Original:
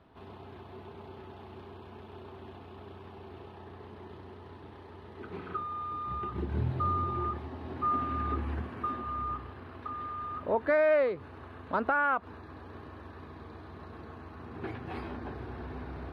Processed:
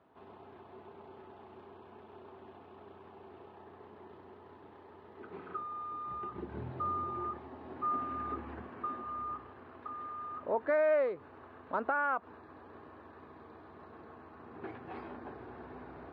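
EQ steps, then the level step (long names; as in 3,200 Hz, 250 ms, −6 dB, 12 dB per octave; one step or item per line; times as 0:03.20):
high-pass filter 470 Hz 6 dB per octave
low-pass filter 1,100 Hz 6 dB per octave
0.0 dB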